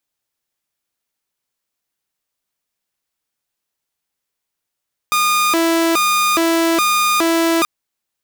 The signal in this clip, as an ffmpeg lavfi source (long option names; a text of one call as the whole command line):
ffmpeg -f lavfi -i "aevalsrc='0.299*(2*mod((775.5*t+444.5/1.2*(0.5-abs(mod(1.2*t,1)-0.5))),1)-1)':duration=2.53:sample_rate=44100" out.wav